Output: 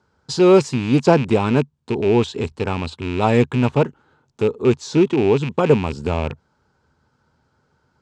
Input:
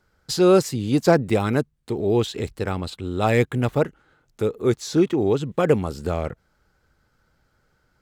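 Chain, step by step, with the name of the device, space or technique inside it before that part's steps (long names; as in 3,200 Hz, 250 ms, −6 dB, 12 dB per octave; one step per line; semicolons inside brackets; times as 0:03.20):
car door speaker with a rattle (loose part that buzzes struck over −27 dBFS, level −19 dBFS; loudspeaker in its box 81–7,800 Hz, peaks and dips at 81 Hz +8 dB, 140 Hz +6 dB, 240 Hz +7 dB, 410 Hz +5 dB, 940 Hz +10 dB, 2,000 Hz −5 dB)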